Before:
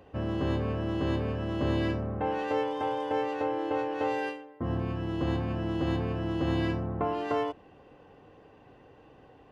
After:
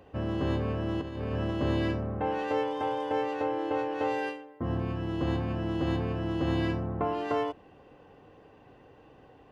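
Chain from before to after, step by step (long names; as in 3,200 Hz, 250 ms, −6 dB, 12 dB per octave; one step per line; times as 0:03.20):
0:01.01–0:01.51: compressor whose output falls as the input rises −32 dBFS, ratio −0.5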